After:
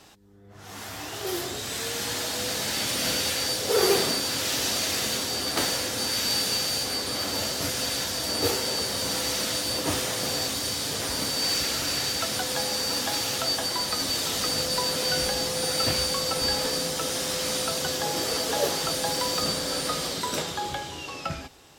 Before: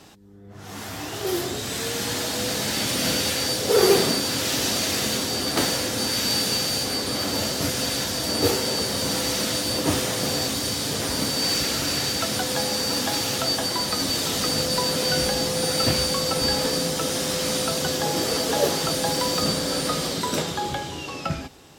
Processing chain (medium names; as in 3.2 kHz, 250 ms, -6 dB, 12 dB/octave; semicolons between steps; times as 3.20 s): peaking EQ 190 Hz -6 dB 2.4 oct; trim -2 dB